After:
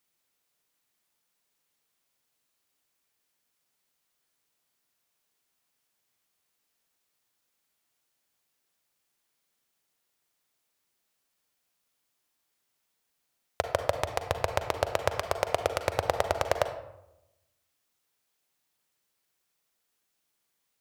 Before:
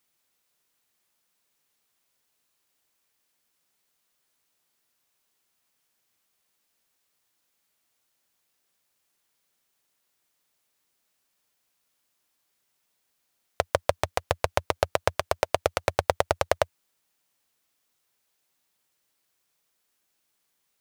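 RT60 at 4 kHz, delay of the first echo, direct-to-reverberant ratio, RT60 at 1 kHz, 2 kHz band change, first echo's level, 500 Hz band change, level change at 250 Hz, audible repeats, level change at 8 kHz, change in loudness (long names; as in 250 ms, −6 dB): 0.50 s, no echo audible, 7.5 dB, 0.85 s, −3.0 dB, no echo audible, −2.5 dB, −2.5 dB, no echo audible, −3.0 dB, −2.5 dB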